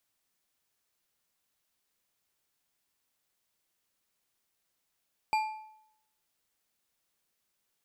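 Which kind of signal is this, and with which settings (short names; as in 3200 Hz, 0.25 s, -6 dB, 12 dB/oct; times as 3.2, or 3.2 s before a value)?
metal hit bar, lowest mode 867 Hz, decay 0.76 s, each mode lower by 8 dB, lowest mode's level -23 dB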